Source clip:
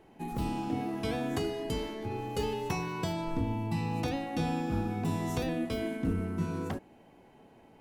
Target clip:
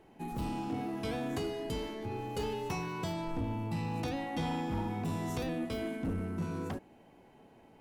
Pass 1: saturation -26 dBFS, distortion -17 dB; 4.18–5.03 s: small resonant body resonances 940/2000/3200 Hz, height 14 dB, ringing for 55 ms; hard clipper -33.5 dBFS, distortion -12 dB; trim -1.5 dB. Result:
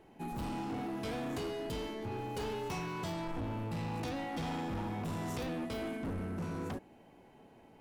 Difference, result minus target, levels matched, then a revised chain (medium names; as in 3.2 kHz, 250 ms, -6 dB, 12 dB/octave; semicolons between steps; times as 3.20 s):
hard clipper: distortion +31 dB
saturation -26 dBFS, distortion -17 dB; 4.18–5.03 s: small resonant body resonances 940/2000/3200 Hz, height 14 dB, ringing for 55 ms; hard clipper -26.5 dBFS, distortion -43 dB; trim -1.5 dB